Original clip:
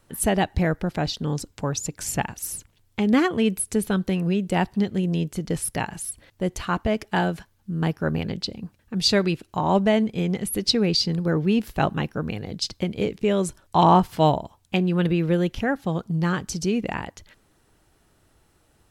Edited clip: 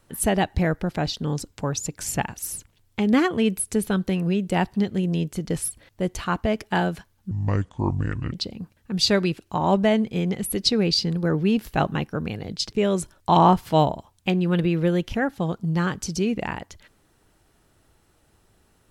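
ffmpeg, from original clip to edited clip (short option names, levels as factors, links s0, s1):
-filter_complex "[0:a]asplit=5[s0][s1][s2][s3][s4];[s0]atrim=end=5.682[s5];[s1]atrim=start=6.088:end=7.724[s6];[s2]atrim=start=7.72:end=8.35,asetpts=PTS-STARTPTS,asetrate=27342,aresample=44100,atrim=end_sample=44811,asetpts=PTS-STARTPTS[s7];[s3]atrim=start=8.346:end=12.742[s8];[s4]atrim=start=13.178[s9];[s5][s6]acrossfade=d=0.004:c1=hsin:c2=hsin[s10];[s10][s7]acrossfade=d=0.004:c1=hsin:c2=hsin[s11];[s11][s8]acrossfade=d=0.004:c1=hsin:c2=hsin[s12];[s12][s9]acrossfade=d=0.004:c1=hsin:c2=hsin"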